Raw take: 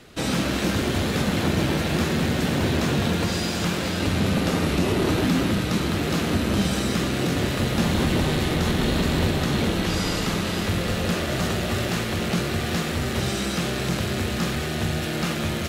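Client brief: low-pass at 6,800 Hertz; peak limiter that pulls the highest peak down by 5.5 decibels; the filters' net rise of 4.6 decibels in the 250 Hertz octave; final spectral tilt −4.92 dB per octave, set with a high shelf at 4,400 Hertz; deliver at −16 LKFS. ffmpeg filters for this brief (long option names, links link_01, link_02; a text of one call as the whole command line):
ffmpeg -i in.wav -af "lowpass=6800,equalizer=frequency=250:width_type=o:gain=6,highshelf=frequency=4400:gain=5.5,volume=6.5dB,alimiter=limit=-6.5dB:level=0:latency=1" out.wav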